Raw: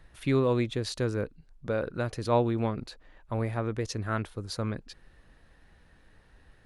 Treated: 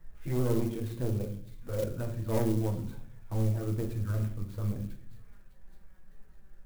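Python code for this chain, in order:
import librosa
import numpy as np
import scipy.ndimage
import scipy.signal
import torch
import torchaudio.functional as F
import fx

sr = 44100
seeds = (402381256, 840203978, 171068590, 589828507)

p1 = fx.pitch_ramps(x, sr, semitones=-1.5, every_ms=197)
p2 = fx.low_shelf(p1, sr, hz=230.0, db=5.5)
p3 = p2 + fx.echo_wet_highpass(p2, sr, ms=607, feedback_pct=50, hz=3100.0, wet_db=-10.0, dry=0)
p4 = fx.env_flanger(p3, sr, rest_ms=6.1, full_db=-24.0)
p5 = 10.0 ** (-24.0 / 20.0) * np.tanh(p4 / 10.0 ** (-24.0 / 20.0))
p6 = fx.air_absorb(p5, sr, metres=370.0)
p7 = fx.room_shoebox(p6, sr, seeds[0], volume_m3=68.0, walls='mixed', distance_m=0.63)
p8 = fx.clock_jitter(p7, sr, seeds[1], jitter_ms=0.048)
y = p8 * librosa.db_to_amplitude(-3.0)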